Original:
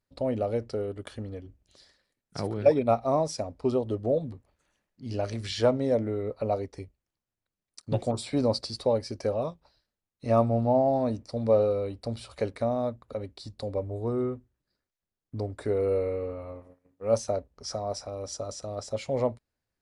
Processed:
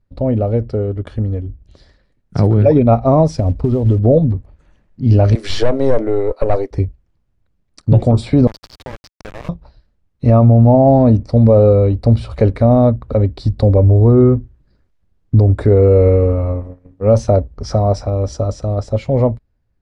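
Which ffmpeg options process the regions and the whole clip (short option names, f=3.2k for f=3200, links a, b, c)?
-filter_complex "[0:a]asettb=1/sr,asplit=3[a][b][c];[a]atrim=end=3.334[d];[b]atrim=start=3.33:end=3.99,asetpts=PTS-STARTPTS,afade=t=in:d=0.004:c=qsin,afade=t=out:st=0.656:d=0.004:c=qsin,lowshelf=f=240:g=6,acompressor=threshold=-30dB:ratio=8:attack=3.2:release=140:knee=1:detection=peak,acrusher=bits=6:mode=log:mix=0:aa=0.000001[e];[c]atrim=start=3.986[f];[d][e]acrossfade=d=0.004:c1=hsin:c2=qsin[g];[g][f]acrossfade=d=0.004:c1=qsin:c2=hsin,asettb=1/sr,asplit=3[h][i][j];[h]atrim=end=5.354[k];[i]atrim=start=5.35:end=6.71,asetpts=PTS-STARTPTS,afade=t=in:d=0.004:c=qsin,afade=t=out:st=1.356:d=0.004:c=qsin,highpass=f=340:w=0.5412,highpass=f=340:w=1.3066,aemphasis=mode=production:type=cd,aeval=exprs='(tanh(14.1*val(0)+0.4)-tanh(0.4))/14.1':c=same[l];[j]atrim=start=6.706[m];[k][l]acrossfade=d=0.004:c1=hsin:c2=qsin[n];[n][m]acrossfade=d=0.004:c1=qsin:c2=hsin,asettb=1/sr,asplit=3[o][p][q];[o]atrim=end=8.474[r];[p]atrim=start=8.47:end=9.49,asetpts=PTS-STARTPTS,afade=t=in:d=0.004:c=qsin,afade=t=out:st=1.016:d=0.004:c=qsin,highpass=1k,acompressor=threshold=-38dB:ratio=8:attack=3.2:release=140:knee=1:detection=peak,aeval=exprs='val(0)*gte(abs(val(0)),0.0133)':c=same[s];[q]atrim=start=9.486[t];[r][s]acrossfade=d=0.004:c1=hsin:c2=qsin[u];[u][t]acrossfade=d=0.004:c1=qsin:c2=hsin,aemphasis=mode=reproduction:type=riaa,dynaudnorm=f=510:g=7:m=11.5dB,alimiter=level_in=8dB:limit=-1dB:release=50:level=0:latency=1,volume=-1dB"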